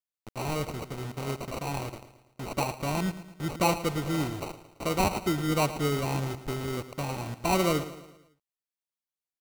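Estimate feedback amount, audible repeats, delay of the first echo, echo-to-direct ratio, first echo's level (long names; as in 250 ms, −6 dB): 49%, 4, 111 ms, −13.0 dB, −14.0 dB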